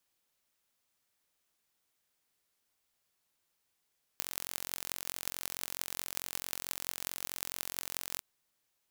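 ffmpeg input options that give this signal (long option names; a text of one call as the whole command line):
ffmpeg -f lavfi -i "aevalsrc='0.501*eq(mod(n,989),0)*(0.5+0.5*eq(mod(n,7912),0))':duration=4:sample_rate=44100" out.wav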